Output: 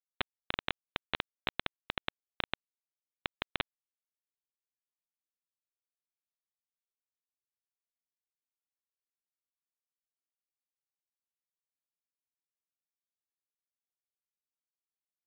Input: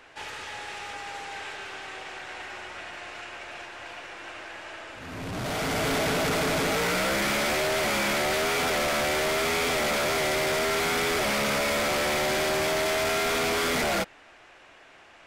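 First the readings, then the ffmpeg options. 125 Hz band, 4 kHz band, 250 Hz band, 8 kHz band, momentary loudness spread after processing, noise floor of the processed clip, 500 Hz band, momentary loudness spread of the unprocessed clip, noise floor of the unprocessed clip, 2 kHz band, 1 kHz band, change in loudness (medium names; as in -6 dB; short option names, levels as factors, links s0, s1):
-19.5 dB, -14.5 dB, -22.0 dB, under -40 dB, 6 LU, under -85 dBFS, -25.5 dB, 15 LU, -53 dBFS, -18.0 dB, -19.5 dB, -14.0 dB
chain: -af "acompressor=threshold=0.02:ratio=20,aresample=8000,acrusher=bits=4:mix=0:aa=0.000001,aresample=44100,volume=4.22"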